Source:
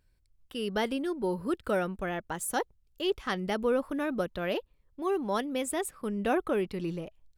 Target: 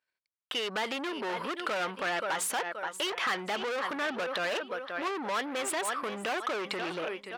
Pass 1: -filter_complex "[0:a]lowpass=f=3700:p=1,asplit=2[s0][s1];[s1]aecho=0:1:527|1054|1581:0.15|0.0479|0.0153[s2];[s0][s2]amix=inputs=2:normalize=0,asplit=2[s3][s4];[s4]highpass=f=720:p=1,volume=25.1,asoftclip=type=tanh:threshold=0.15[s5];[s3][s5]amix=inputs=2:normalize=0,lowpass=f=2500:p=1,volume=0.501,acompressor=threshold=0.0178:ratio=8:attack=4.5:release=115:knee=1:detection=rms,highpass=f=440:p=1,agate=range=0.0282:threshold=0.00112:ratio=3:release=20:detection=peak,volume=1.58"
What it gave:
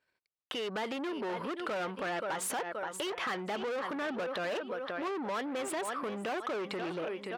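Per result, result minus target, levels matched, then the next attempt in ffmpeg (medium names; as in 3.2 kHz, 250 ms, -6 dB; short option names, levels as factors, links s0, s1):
compression: peak gain reduction +8 dB; 500 Hz band +2.5 dB
-filter_complex "[0:a]lowpass=f=3700:p=1,asplit=2[s0][s1];[s1]aecho=0:1:527|1054|1581:0.15|0.0479|0.0153[s2];[s0][s2]amix=inputs=2:normalize=0,asplit=2[s3][s4];[s4]highpass=f=720:p=1,volume=25.1,asoftclip=type=tanh:threshold=0.15[s5];[s3][s5]amix=inputs=2:normalize=0,lowpass=f=2500:p=1,volume=0.501,acompressor=threshold=0.0501:ratio=8:attack=4.5:release=115:knee=1:detection=rms,highpass=f=440:p=1,agate=range=0.0282:threshold=0.00112:ratio=3:release=20:detection=peak,volume=1.58"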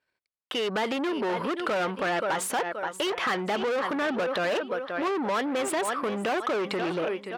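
500 Hz band +2.5 dB
-filter_complex "[0:a]lowpass=f=3700:p=1,asplit=2[s0][s1];[s1]aecho=0:1:527|1054|1581:0.15|0.0479|0.0153[s2];[s0][s2]amix=inputs=2:normalize=0,asplit=2[s3][s4];[s4]highpass=f=720:p=1,volume=25.1,asoftclip=type=tanh:threshold=0.15[s5];[s3][s5]amix=inputs=2:normalize=0,lowpass=f=2500:p=1,volume=0.501,acompressor=threshold=0.0501:ratio=8:attack=4.5:release=115:knee=1:detection=rms,highpass=f=1400:p=1,agate=range=0.0282:threshold=0.00112:ratio=3:release=20:detection=peak,volume=1.58"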